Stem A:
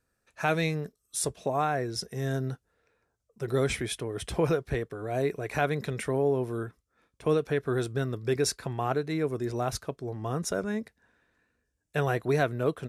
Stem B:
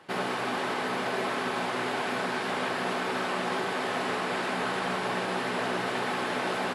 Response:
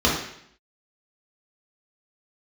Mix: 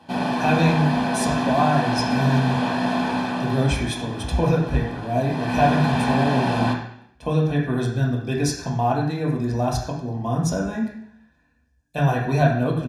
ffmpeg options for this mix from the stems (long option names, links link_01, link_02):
-filter_complex "[0:a]volume=-3dB,asplit=2[link_01][link_02];[link_02]volume=-12dB[link_03];[1:a]lowshelf=frequency=150:gain=11.5,asoftclip=type=tanh:threshold=-17.5dB,volume=9dB,afade=type=out:start_time=3.09:duration=0.68:silence=0.237137,afade=type=in:start_time=5.21:duration=0.5:silence=0.223872,asplit=2[link_04][link_05];[link_05]volume=-12.5dB[link_06];[2:a]atrim=start_sample=2205[link_07];[link_03][link_06]amix=inputs=2:normalize=0[link_08];[link_08][link_07]afir=irnorm=-1:irlink=0[link_09];[link_01][link_04][link_09]amix=inputs=3:normalize=0,aecho=1:1:1.2:0.67"